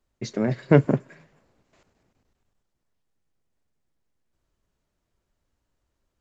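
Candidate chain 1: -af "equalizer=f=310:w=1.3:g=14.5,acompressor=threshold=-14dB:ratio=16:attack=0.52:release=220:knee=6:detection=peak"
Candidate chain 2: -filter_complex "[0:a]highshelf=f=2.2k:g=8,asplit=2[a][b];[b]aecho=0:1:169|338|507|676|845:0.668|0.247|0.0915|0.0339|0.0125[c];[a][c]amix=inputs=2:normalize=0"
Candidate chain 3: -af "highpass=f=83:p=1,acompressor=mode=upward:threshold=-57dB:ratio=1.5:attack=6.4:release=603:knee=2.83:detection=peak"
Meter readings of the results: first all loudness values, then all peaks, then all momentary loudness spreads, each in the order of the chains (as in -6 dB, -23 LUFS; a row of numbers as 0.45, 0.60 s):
-25.5, -21.5, -23.5 LUFS; -11.5, -1.5, -3.5 dBFS; 6, 15, 10 LU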